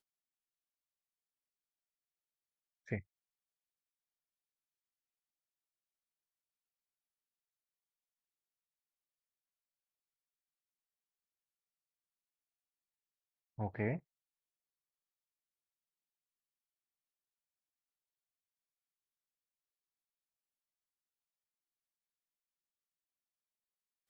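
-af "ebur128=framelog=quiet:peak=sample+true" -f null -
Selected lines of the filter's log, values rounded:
Integrated loudness:
  I:         -41.3 LUFS
  Threshold: -52.0 LUFS
Loudness range:
  LRA:         6.2 LU
  Threshold: -69.0 LUFS
  LRA low:   -52.8 LUFS
  LRA high:  -46.6 LUFS
Sample peak:
  Peak:      -23.3 dBFS
True peak:
  Peak:      -23.3 dBFS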